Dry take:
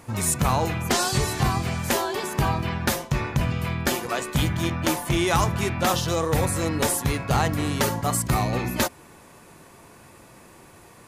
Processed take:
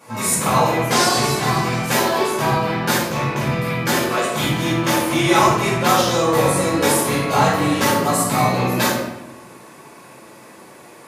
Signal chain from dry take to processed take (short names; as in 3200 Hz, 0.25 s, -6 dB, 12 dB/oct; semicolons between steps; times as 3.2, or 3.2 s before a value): HPF 240 Hz 12 dB/oct; shoebox room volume 380 m³, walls mixed, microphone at 5.3 m; gain -5 dB